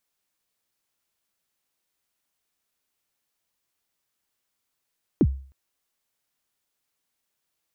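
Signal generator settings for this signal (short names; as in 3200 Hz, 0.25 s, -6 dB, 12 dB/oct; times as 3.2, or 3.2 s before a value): kick drum length 0.31 s, from 390 Hz, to 67 Hz, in 52 ms, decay 0.44 s, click off, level -11.5 dB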